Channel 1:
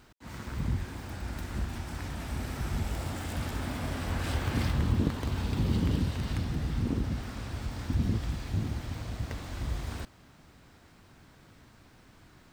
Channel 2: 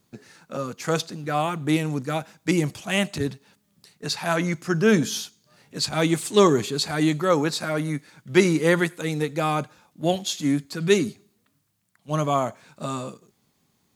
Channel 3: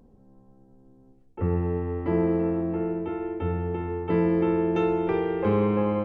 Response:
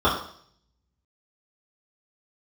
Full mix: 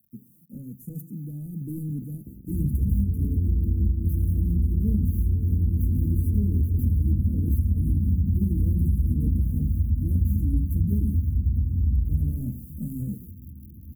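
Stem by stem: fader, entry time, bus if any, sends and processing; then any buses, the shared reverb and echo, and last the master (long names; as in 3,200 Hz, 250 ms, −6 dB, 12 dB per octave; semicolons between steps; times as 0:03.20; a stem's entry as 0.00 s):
+1.0 dB, 2.25 s, no bus, send −6.5 dB, brickwall limiter −23.5 dBFS, peak gain reduction 10.5 dB
0:02.39 −18.5 dB → 0:02.88 −7.5 dB, 0.00 s, bus A, send −9.5 dB, bit-depth reduction 10 bits, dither none
−6.5 dB, 1.40 s, bus A, no send, leveller curve on the samples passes 5; downward compressor, threshold −20 dBFS, peak gain reduction 6 dB; power curve on the samples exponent 1.4
bus A: 0.0 dB, mid-hump overdrive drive 38 dB, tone 6,700 Hz, clips at −10 dBFS; downward compressor, threshold −20 dBFS, peak gain reduction 6 dB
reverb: on, RT60 0.60 s, pre-delay 3 ms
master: inverse Chebyshev band-stop filter 840–4,500 Hz, stop band 70 dB; downward compressor, threshold −19 dBFS, peak gain reduction 11.5 dB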